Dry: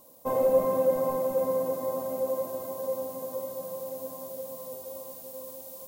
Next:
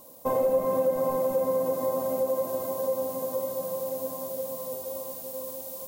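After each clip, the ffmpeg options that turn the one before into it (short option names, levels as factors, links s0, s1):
-af "acompressor=threshold=0.0355:ratio=2.5,volume=1.78"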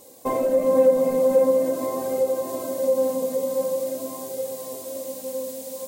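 -af "equalizer=f=125:t=o:w=1:g=6,equalizer=f=250:t=o:w=1:g=8,equalizer=f=500:t=o:w=1:g=7,equalizer=f=2000:t=o:w=1:g=10,equalizer=f=4000:t=o:w=1:g=6,equalizer=f=8000:t=o:w=1:g=10,flanger=delay=2.3:depth=2:regen=23:speed=0.45:shape=triangular"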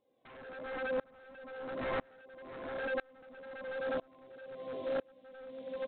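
-af "acompressor=threshold=0.0447:ratio=12,aresample=8000,aeval=exprs='0.0299*(abs(mod(val(0)/0.0299+3,4)-2)-1)':c=same,aresample=44100,aeval=exprs='val(0)*pow(10,-31*if(lt(mod(-1*n/s,1),2*abs(-1)/1000),1-mod(-1*n/s,1)/(2*abs(-1)/1000),(mod(-1*n/s,1)-2*abs(-1)/1000)/(1-2*abs(-1)/1000))/20)':c=same,volume=1.5"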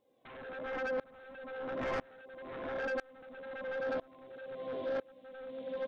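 -af "asoftclip=type=tanh:threshold=0.0211,volume=1.41"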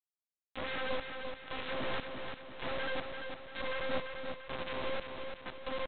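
-filter_complex "[0:a]acrossover=split=1300[s0][s1];[s0]aeval=exprs='val(0)*(1-0.5/2+0.5/2*cos(2*PI*3.3*n/s))':c=same[s2];[s1]aeval=exprs='val(0)*(1-0.5/2-0.5/2*cos(2*PI*3.3*n/s))':c=same[s3];[s2][s3]amix=inputs=2:normalize=0,aresample=8000,acrusher=bits=4:dc=4:mix=0:aa=0.000001,aresample=44100,aecho=1:1:342|684|1026|1368|1710|2052:0.501|0.236|0.111|0.052|0.0245|0.0115,volume=1.78"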